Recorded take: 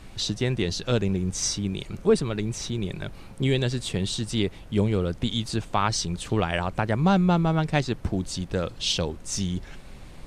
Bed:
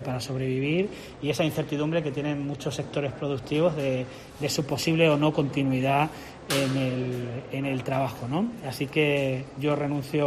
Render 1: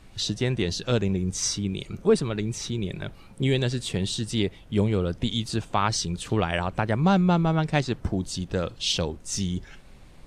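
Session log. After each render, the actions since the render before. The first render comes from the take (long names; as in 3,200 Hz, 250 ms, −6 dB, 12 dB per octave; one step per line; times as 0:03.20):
noise reduction from a noise print 6 dB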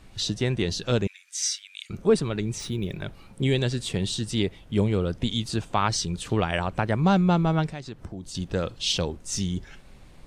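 0:01.07–0:01.90: Butterworth high-pass 1,600 Hz
0:02.60–0:03.02: linearly interpolated sample-rate reduction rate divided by 3×
0:07.68–0:08.35: downward compressor 2.5 to 1, threshold −38 dBFS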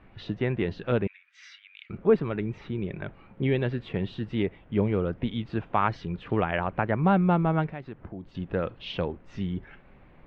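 low-pass filter 2,400 Hz 24 dB per octave
low-shelf EQ 110 Hz −7.5 dB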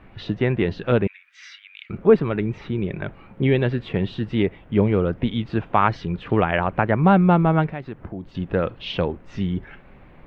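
level +6.5 dB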